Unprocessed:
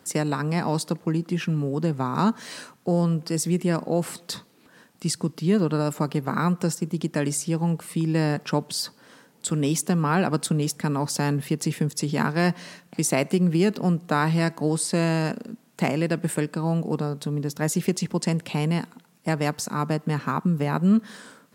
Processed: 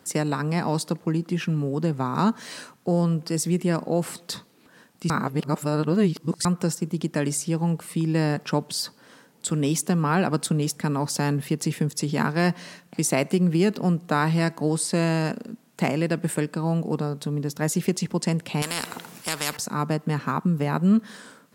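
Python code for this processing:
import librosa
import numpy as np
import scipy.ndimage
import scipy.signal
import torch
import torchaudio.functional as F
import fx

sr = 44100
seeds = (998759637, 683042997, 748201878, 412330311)

y = fx.spectral_comp(x, sr, ratio=4.0, at=(18.62, 19.57))
y = fx.edit(y, sr, fx.reverse_span(start_s=5.1, length_s=1.35), tone=tone)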